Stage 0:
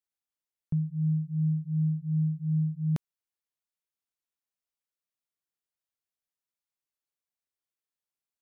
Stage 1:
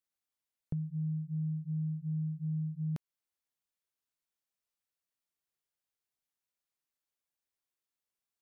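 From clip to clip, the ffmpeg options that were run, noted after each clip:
-af "acompressor=threshold=0.02:ratio=4"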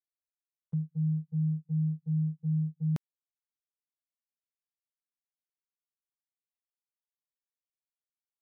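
-af "aeval=exprs='0.0335*(abs(mod(val(0)/0.0335+3,4)-2)-1)':c=same,agate=range=0.0141:threshold=0.0178:ratio=16:detection=peak,volume=2.11"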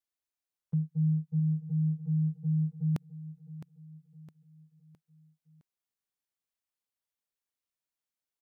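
-af "aecho=1:1:662|1324|1986|2648:0.211|0.093|0.0409|0.018,volume=1.26"

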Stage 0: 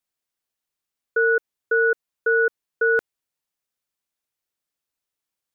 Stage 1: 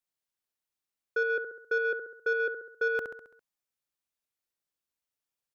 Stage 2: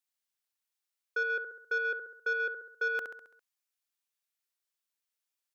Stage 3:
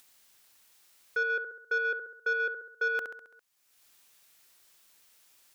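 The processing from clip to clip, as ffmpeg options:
-af "aecho=1:1:67|134|201|268|335|402:0.398|0.207|0.108|0.056|0.0291|0.0151,aeval=exprs='0.266*(cos(1*acos(clip(val(0)/0.266,-1,1)))-cos(1*PI/2))+0.0119*(cos(5*acos(clip(val(0)/0.266,-1,1)))-cos(5*PI/2))':c=same,volume=0.398"
-af "highpass=f=1400:p=1,volume=1.26"
-af "acompressor=mode=upward:threshold=0.00562:ratio=2.5,volume=1.26"

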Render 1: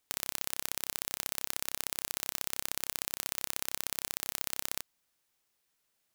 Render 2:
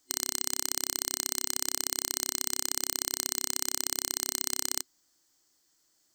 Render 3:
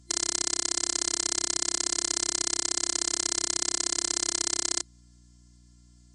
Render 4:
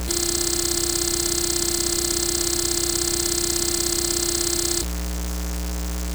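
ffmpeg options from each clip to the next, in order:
-filter_complex "[0:a]superequalizer=6b=2.82:12b=0.501:14b=2.51:15b=2.82:16b=0.708,asplit=2[s0][s1];[s1]alimiter=limit=0.299:level=0:latency=1,volume=1[s2];[s0][s2]amix=inputs=2:normalize=0,volume=0.794"
-af "afftfilt=real='re*between(b*sr/4096,120,10000)':imag='im*between(b*sr/4096,120,10000)':win_size=4096:overlap=0.75,afftfilt=real='hypot(re,im)*cos(PI*b)':imag='0':win_size=512:overlap=0.75,aeval=exprs='val(0)+0.000708*(sin(2*PI*60*n/s)+sin(2*PI*2*60*n/s)/2+sin(2*PI*3*60*n/s)/3+sin(2*PI*4*60*n/s)/4+sin(2*PI*5*60*n/s)/5)':c=same,volume=2.51"
-af "aeval=exprs='val(0)+0.5*0.075*sgn(val(0))':c=same,volume=1.26"

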